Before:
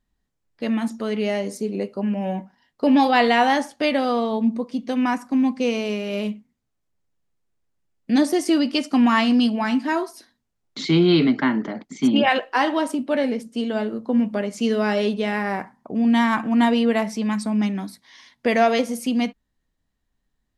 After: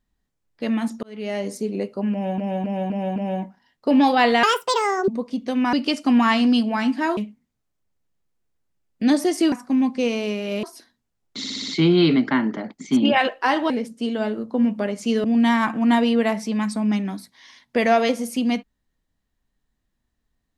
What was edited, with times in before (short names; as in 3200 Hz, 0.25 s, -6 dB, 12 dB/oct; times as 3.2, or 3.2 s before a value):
1.03–1.46 fade in
2.12–2.38 loop, 5 plays
3.39–4.49 speed 169%
5.14–6.25 swap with 8.6–10.04
10.79 stutter 0.06 s, 6 plays
12.81–13.25 cut
14.79–15.94 cut